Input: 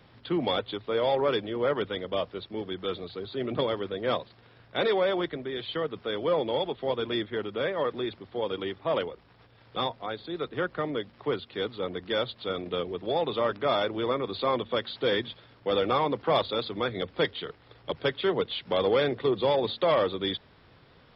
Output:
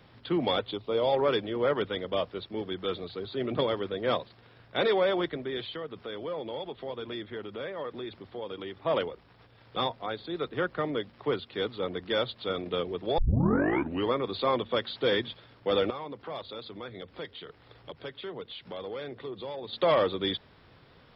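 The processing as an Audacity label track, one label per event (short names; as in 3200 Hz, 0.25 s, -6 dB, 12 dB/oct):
0.710000	1.130000	bell 1700 Hz -11 dB 0.68 oct
5.660000	8.860000	compressor 2:1, threshold -39 dBFS
13.180000	13.180000	tape start 0.95 s
15.900000	19.730000	compressor 2:1, threshold -46 dBFS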